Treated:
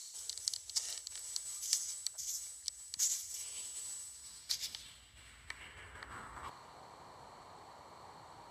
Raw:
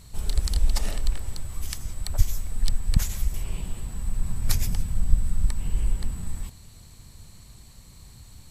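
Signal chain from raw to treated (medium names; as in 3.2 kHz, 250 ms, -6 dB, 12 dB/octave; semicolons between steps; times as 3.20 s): resonant low shelf 250 Hz -7 dB, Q 1.5; band-stop 2.5 kHz, Q 12; frequency shift +43 Hz; reverse; compression 6:1, threshold -36 dBFS, peak gain reduction 18 dB; reverse; band-pass sweep 6.3 kHz -> 870 Hz, 4.04–6.81 s; trim +13.5 dB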